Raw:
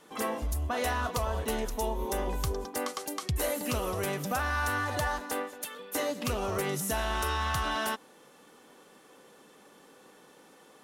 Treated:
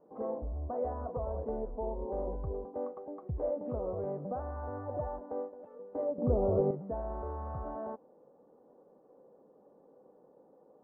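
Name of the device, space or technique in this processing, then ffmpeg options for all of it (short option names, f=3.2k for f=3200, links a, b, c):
under water: -filter_complex "[0:a]lowpass=f=840:w=0.5412,lowpass=f=840:w=1.3066,equalizer=f=540:t=o:w=0.59:g=7,asettb=1/sr,asplit=3[a][b][c];[a]atrim=end=6.184[d];[b]atrim=start=6.18:end=6.71,asetpts=PTS-STARTPTS,afade=t=in:d=0.004:c=qsin,afade=t=out:st=0.526:d=0.004:c=qsin,tiltshelf=f=1.3k:g=10[e];[c]atrim=start=6.706[f];[d][e]acrossfade=d=0.004:c1=hsin:c2=qsin[g];[g][f]acrossfade=d=0.004:c1=qsin:c2=hsin,volume=-6dB"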